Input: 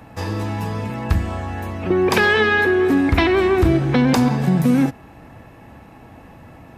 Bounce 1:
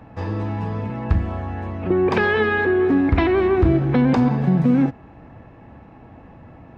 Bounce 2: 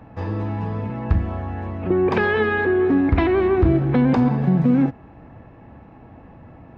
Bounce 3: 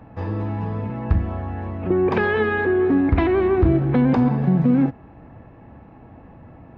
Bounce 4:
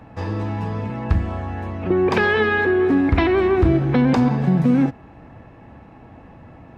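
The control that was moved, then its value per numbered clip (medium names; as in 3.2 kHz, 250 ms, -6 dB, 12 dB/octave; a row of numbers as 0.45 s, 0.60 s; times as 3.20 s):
tape spacing loss, at 10 kHz: 28 dB, 37 dB, 45 dB, 20 dB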